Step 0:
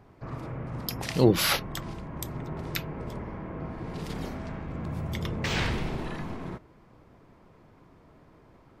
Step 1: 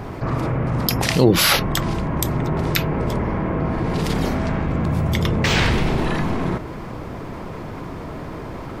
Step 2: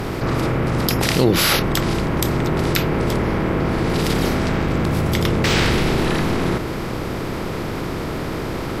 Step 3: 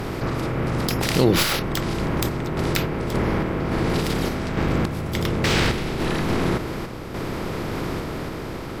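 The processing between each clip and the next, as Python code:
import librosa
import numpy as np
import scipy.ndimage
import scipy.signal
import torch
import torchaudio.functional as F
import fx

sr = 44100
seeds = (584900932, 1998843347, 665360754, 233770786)

y1 = fx.env_flatten(x, sr, amount_pct=50)
y1 = y1 * 10.0 ** (4.5 / 20.0)
y2 = fx.bin_compress(y1, sr, power=0.6)
y2 = y2 * 10.0 ** (-3.0 / 20.0)
y3 = fx.tracing_dist(y2, sr, depth_ms=0.07)
y3 = fx.tremolo_random(y3, sr, seeds[0], hz=3.5, depth_pct=55)
y3 = y3 * 10.0 ** (-1.5 / 20.0)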